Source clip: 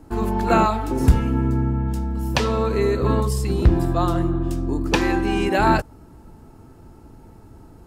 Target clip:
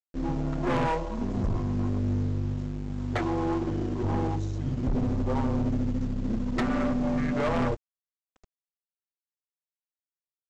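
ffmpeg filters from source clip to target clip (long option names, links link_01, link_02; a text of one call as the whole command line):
ffmpeg -i in.wav -filter_complex "[0:a]afwtdn=0.0447,aecho=1:1:6.3:0.83,asplit=2[link_01][link_02];[link_02]acrusher=bits=5:mix=0:aa=0.000001,volume=-8dB[link_03];[link_01][link_03]amix=inputs=2:normalize=0,asetrate=33075,aresample=44100,aresample=16000,aeval=exprs='sgn(val(0))*max(abs(val(0))-0.0211,0)':channel_layout=same,aresample=44100,aeval=exprs='1.12*(cos(1*acos(clip(val(0)/1.12,-1,1)))-cos(1*PI/2))+0.112*(cos(3*acos(clip(val(0)/1.12,-1,1)))-cos(3*PI/2))+0.282*(cos(6*acos(clip(val(0)/1.12,-1,1)))-cos(6*PI/2))+0.112*(cos(8*acos(clip(val(0)/1.12,-1,1)))-cos(8*PI/2))':channel_layout=same,asoftclip=type=tanh:threshold=-16.5dB,volume=-4dB" out.wav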